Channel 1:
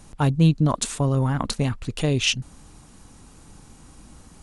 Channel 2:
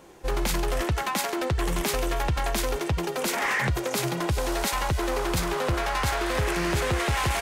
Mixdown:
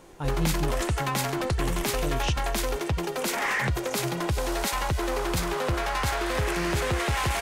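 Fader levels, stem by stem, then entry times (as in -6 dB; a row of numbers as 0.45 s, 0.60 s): -12.0 dB, -1.0 dB; 0.00 s, 0.00 s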